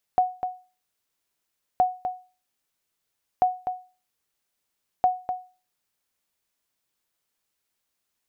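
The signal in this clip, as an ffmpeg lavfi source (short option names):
-f lavfi -i "aevalsrc='0.251*(sin(2*PI*735*mod(t,1.62))*exp(-6.91*mod(t,1.62)/0.34)+0.376*sin(2*PI*735*max(mod(t,1.62)-0.25,0))*exp(-6.91*max(mod(t,1.62)-0.25,0)/0.34))':d=6.48:s=44100"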